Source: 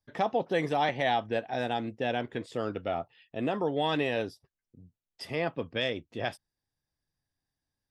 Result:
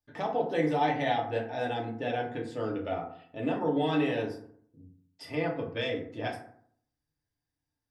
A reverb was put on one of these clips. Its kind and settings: FDN reverb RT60 0.61 s, low-frequency decay 1.2×, high-frequency decay 0.45×, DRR -2 dB; gain -5.5 dB

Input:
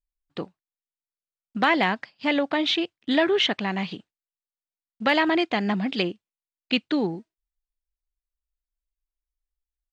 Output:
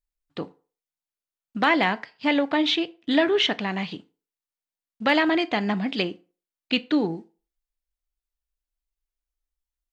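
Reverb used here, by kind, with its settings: FDN reverb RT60 0.38 s, low-frequency decay 0.8×, high-frequency decay 0.7×, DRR 12.5 dB

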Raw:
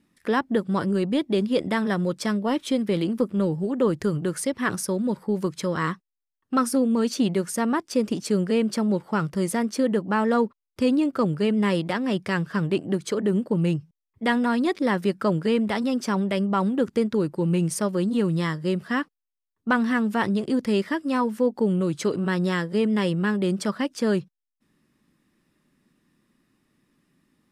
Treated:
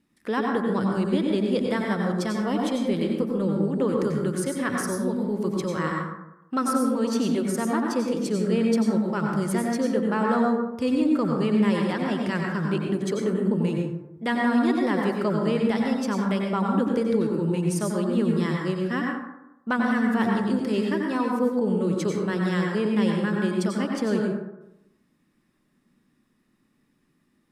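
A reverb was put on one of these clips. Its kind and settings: plate-style reverb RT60 0.91 s, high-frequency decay 0.4×, pre-delay 80 ms, DRR 0 dB; gain -4 dB

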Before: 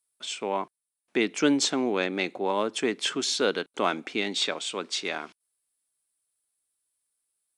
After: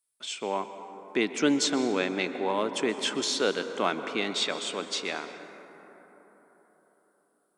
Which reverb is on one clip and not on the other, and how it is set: plate-style reverb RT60 4.4 s, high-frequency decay 0.3×, pre-delay 0.11 s, DRR 9 dB; gain -1.5 dB

